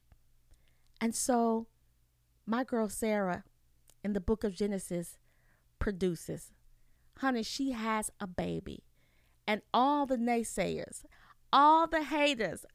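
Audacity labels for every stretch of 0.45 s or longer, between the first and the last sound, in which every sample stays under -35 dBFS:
1.610000	2.480000	silence
3.370000	4.050000	silence
5.030000	5.810000	silence
6.360000	7.230000	silence
8.750000	9.480000	silence
10.970000	11.530000	silence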